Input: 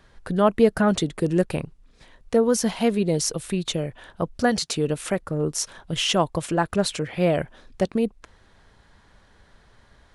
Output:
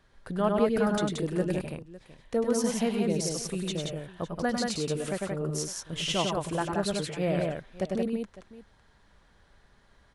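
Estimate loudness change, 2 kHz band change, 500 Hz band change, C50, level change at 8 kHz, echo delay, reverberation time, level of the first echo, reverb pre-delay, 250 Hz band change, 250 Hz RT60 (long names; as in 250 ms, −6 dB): −6.0 dB, −6.0 dB, −6.0 dB, no reverb audible, −6.0 dB, 98 ms, no reverb audible, −6.5 dB, no reverb audible, −5.5 dB, no reverb audible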